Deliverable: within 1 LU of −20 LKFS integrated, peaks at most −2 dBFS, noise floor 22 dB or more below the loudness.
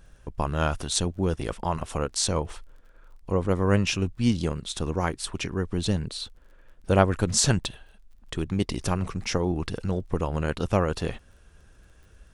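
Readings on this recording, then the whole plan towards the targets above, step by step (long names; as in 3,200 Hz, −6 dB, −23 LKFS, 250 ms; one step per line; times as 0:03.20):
crackle rate 30 per second; integrated loudness −27.0 LKFS; sample peak −5.0 dBFS; target loudness −20.0 LKFS
→ click removal
level +7 dB
brickwall limiter −2 dBFS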